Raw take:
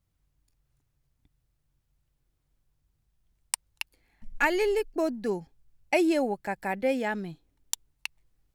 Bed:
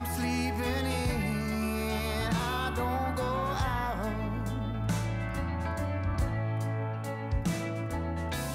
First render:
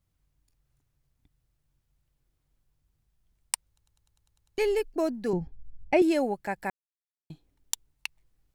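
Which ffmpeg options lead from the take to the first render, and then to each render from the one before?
-filter_complex "[0:a]asettb=1/sr,asplit=3[s0][s1][s2];[s0]atrim=end=5.334[s3];[s1]atrim=start=5.33:end=6.02,asetpts=PTS-STARTPTS,afade=t=in:d=0.004:c=qsin,afade=t=out:st=0.686:d=0.004:c=qsin,aemphasis=mode=reproduction:type=riaa[s4];[s2]atrim=start=6.016[s5];[s3][s4]acrossfade=d=0.004:c1=hsin:c2=qsin[s6];[s6][s5]acrossfade=d=0.004:c1=qsin:c2=hsin,asplit=12[s7][s8][s9][s10][s11][s12][s13][s14][s15][s16][s17][s18];[s7]atrim=end=3.782[s19];[s8]atrim=start=3.678:end=3.782[s20];[s9]atrim=start=3.678:end=3.782[s21];[s10]atrim=start=3.678:end=3.782[s22];[s11]atrim=start=3.678:end=3.782[s23];[s12]atrim=start=3.678:end=3.782[s24];[s13]atrim=start=3.678:end=3.782[s25];[s14]atrim=start=3.678:end=3.782[s26];[s15]atrim=start=3.678:end=3.782[s27];[s16]atrim=start=4.578:end=6.7,asetpts=PTS-STARTPTS,afade=t=out:st=2.118:d=0.004:c=hsin[s28];[s17]atrim=start=6.7:end=7.3,asetpts=PTS-STARTPTS,volume=0[s29];[s18]atrim=start=7.3,asetpts=PTS-STARTPTS,afade=t=in:d=0.004:c=hsin[s30];[s19][s20]acrossfade=d=0.004:c1=hsin:c2=hsin[s31];[s31][s21]acrossfade=d=0.004:c1=hsin:c2=hsin[s32];[s32][s22]acrossfade=d=0.004:c1=hsin:c2=hsin[s33];[s33][s23]acrossfade=d=0.004:c1=hsin:c2=hsin[s34];[s34][s24]acrossfade=d=0.004:c1=hsin:c2=hsin[s35];[s35][s25]acrossfade=d=0.004:c1=hsin:c2=hsin[s36];[s36][s26]acrossfade=d=0.004:c1=hsin:c2=hsin[s37];[s37][s27]acrossfade=d=0.004:c1=hsin:c2=hsin[s38];[s28][s29][s30]concat=n=3:v=0:a=1[s39];[s38][s39]acrossfade=d=0.004:c1=hsin:c2=hsin"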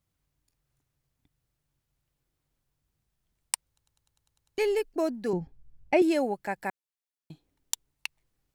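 -af "lowshelf=f=78:g=-11.5"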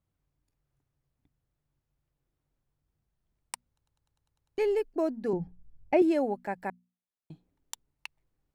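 -af "highshelf=f=2100:g=-11.5,bandreject=f=60:t=h:w=6,bandreject=f=120:t=h:w=6,bandreject=f=180:t=h:w=6,bandreject=f=240:t=h:w=6"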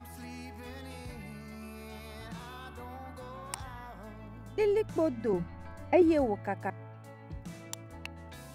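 -filter_complex "[1:a]volume=0.2[s0];[0:a][s0]amix=inputs=2:normalize=0"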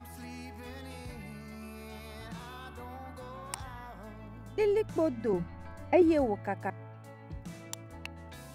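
-af anull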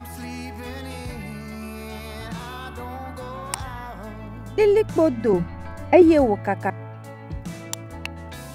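-af "volume=3.35"

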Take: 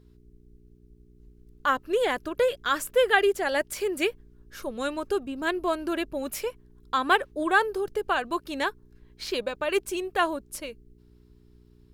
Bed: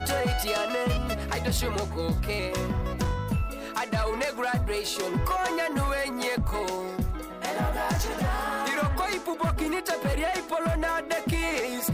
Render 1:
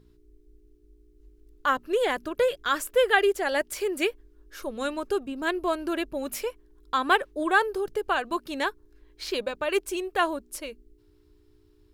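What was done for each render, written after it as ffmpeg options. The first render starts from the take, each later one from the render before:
-af "bandreject=f=60:t=h:w=4,bandreject=f=120:t=h:w=4,bandreject=f=180:t=h:w=4,bandreject=f=240:t=h:w=4"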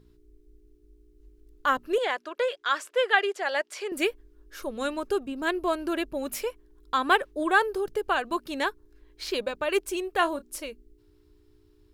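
-filter_complex "[0:a]asettb=1/sr,asplit=3[s0][s1][s2];[s0]atrim=end=1.984[s3];[s1]atrim=start=1.98:end=3.92,asetpts=PTS-STARTPTS,afade=t=in:d=0.004:c=qsin,afade=t=out:st=1.936:d=0.004:c=qsin,highpass=550,lowpass=6000[s4];[s2]atrim=start=3.916[s5];[s3][s4]acrossfade=d=0.004:c1=hsin:c2=qsin[s6];[s6][s5]acrossfade=d=0.004:c1=qsin:c2=hsin,asettb=1/sr,asplit=3[s7][s8][s9];[s7]atrim=end=10.174[s10];[s8]atrim=start=10.17:end=10.65,asetpts=PTS-STARTPTS,afade=t=in:d=0.004:c=qsin,afade=t=out:st=0.476:d=0.004:c=qsin,asplit=2[s11][s12];[s12]adelay=30,volume=0.211[s13];[s11][s13]amix=inputs=2:normalize=0,atrim=end_sample=21168[s14];[s9]atrim=start=10.646[s15];[s10][s14]acrossfade=d=0.004:c1=hsin:c2=qsin[s16];[s16][s15]acrossfade=d=0.004:c1=qsin:c2=hsin"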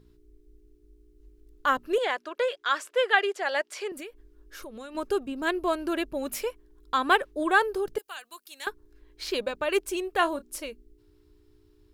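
-filter_complex "[0:a]asettb=1/sr,asplit=3[s0][s1][s2];[s0]atrim=end=3.914[s3];[s1]atrim=start=3.91:end=4.95,asetpts=PTS-STARTPTS,afade=t=in:d=0.004:c=qsin,afade=t=out:st=1.036:d=0.004:c=qsin,acompressor=threshold=0.0126:ratio=6:attack=3.2:release=140:knee=1:detection=peak[s4];[s2]atrim=start=4.946[s5];[s3][s4]acrossfade=d=0.004:c1=hsin:c2=qsin[s6];[s6][s5]acrossfade=d=0.004:c1=qsin:c2=hsin,asettb=1/sr,asplit=3[s7][s8][s9];[s7]atrim=end=7.984[s10];[s8]atrim=start=7.98:end=8.67,asetpts=PTS-STARTPTS,afade=t=in:d=0.004:c=qsin,afade=t=out:st=0.686:d=0.004:c=qsin,aderivative[s11];[s9]atrim=start=8.666[s12];[s10][s11]acrossfade=d=0.004:c1=hsin:c2=qsin[s13];[s13][s12]acrossfade=d=0.004:c1=qsin:c2=hsin"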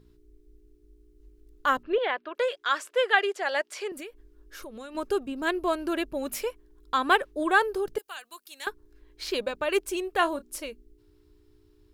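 -filter_complex "[0:a]asettb=1/sr,asplit=3[s0][s1][s2];[s0]atrim=end=1.834[s3];[s1]atrim=start=1.83:end=2.35,asetpts=PTS-STARTPTS,afade=t=in:d=0.004:c=qsin,afade=t=out:st=0.516:d=0.004:c=qsin,lowpass=f=3500:w=0.5412,lowpass=f=3500:w=1.3066[s4];[s2]atrim=start=2.346[s5];[s3][s4]acrossfade=d=0.004:c1=hsin:c2=qsin[s6];[s6][s5]acrossfade=d=0.004:c1=qsin:c2=hsin"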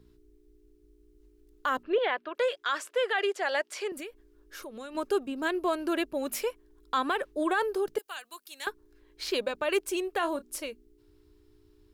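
-filter_complex "[0:a]acrossover=split=170[s0][s1];[s0]acompressor=threshold=0.00126:ratio=6[s2];[s1]alimiter=limit=0.126:level=0:latency=1:release=34[s3];[s2][s3]amix=inputs=2:normalize=0"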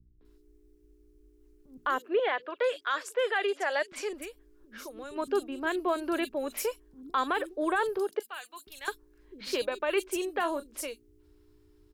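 -filter_complex "[0:a]acrossover=split=220|3700[s0][s1][s2];[s1]adelay=210[s3];[s2]adelay=250[s4];[s0][s3][s4]amix=inputs=3:normalize=0"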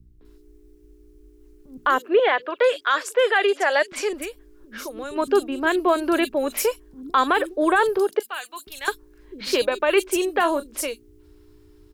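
-af "volume=2.99"

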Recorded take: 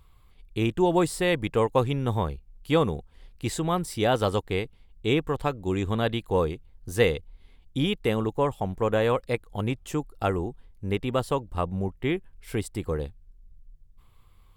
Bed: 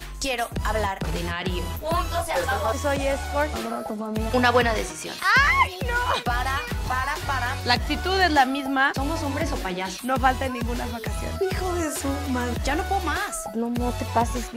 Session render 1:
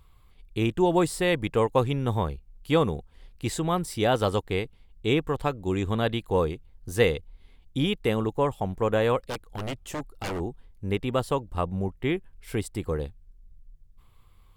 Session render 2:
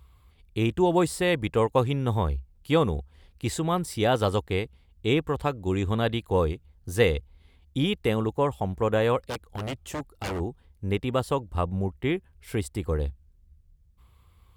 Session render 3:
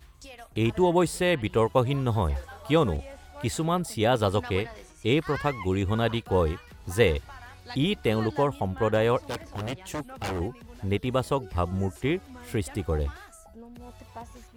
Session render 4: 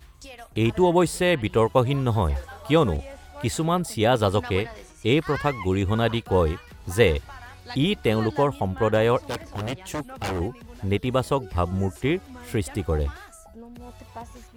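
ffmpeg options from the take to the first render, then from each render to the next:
-filter_complex "[0:a]asplit=3[s0][s1][s2];[s0]afade=t=out:st=9.22:d=0.02[s3];[s1]aeval=exprs='0.0501*(abs(mod(val(0)/0.0501+3,4)-2)-1)':c=same,afade=t=in:st=9.22:d=0.02,afade=t=out:st=10.39:d=0.02[s4];[s2]afade=t=in:st=10.39:d=0.02[s5];[s3][s4][s5]amix=inputs=3:normalize=0"
-af "highpass=50,equalizer=f=66:w=2.6:g=11"
-filter_complex "[1:a]volume=0.1[s0];[0:a][s0]amix=inputs=2:normalize=0"
-af "volume=1.41"

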